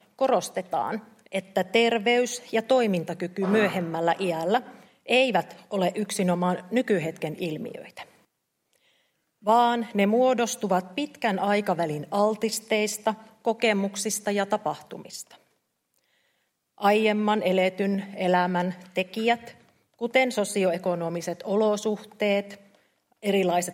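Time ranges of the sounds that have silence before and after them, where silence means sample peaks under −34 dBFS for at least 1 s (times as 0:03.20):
0:09.47–0:15.22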